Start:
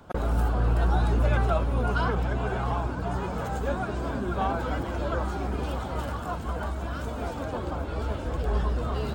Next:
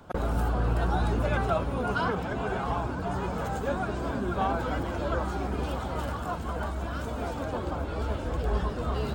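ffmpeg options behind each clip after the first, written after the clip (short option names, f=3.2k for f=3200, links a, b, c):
-af "bandreject=f=60:t=h:w=6,bandreject=f=120:t=h:w=6"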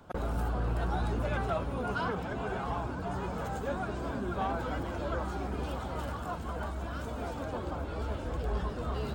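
-af "asoftclip=type=tanh:threshold=-17.5dB,volume=-4dB"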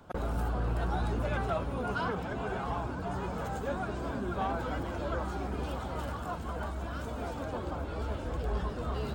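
-af anull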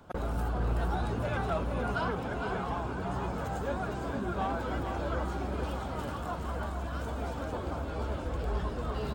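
-af "aecho=1:1:457:0.447"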